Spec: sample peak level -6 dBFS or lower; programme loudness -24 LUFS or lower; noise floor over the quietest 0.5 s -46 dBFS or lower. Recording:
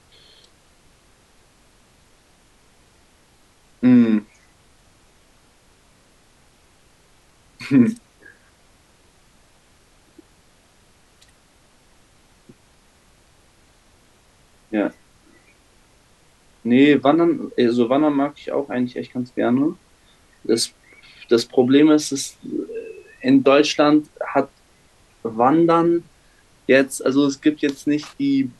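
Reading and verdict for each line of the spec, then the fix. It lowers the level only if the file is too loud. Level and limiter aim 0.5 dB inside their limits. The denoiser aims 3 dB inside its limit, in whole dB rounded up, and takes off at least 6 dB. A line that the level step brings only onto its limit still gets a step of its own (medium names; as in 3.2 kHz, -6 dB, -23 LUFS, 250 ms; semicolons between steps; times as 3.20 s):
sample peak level -2.5 dBFS: fail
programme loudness -18.5 LUFS: fail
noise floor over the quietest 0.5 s -55 dBFS: pass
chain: trim -6 dB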